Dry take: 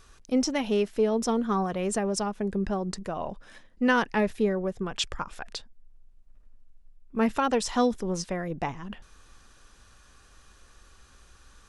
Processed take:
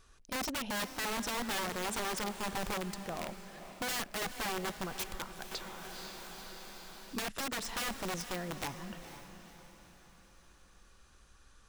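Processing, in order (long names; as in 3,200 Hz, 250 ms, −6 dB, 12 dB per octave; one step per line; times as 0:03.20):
wrap-around overflow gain 23 dB
feedback delay with all-pass diffusion 487 ms, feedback 46%, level −11 dB
0:05.51–0:07.68: multiband upward and downward compressor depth 70%
level −7.5 dB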